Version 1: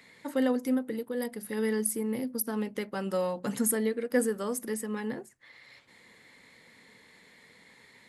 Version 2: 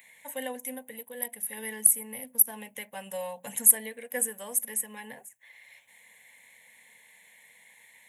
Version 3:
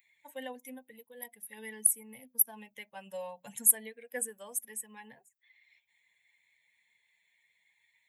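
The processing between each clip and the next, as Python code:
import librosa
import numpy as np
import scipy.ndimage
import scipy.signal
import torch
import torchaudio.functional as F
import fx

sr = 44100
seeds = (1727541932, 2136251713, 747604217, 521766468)

y1 = fx.riaa(x, sr, side='recording')
y1 = fx.fixed_phaser(y1, sr, hz=1300.0, stages=6)
y1 = y1 * librosa.db_to_amplitude(-1.0)
y2 = fx.bin_expand(y1, sr, power=1.5)
y2 = y2 * librosa.db_to_amplitude(-3.5)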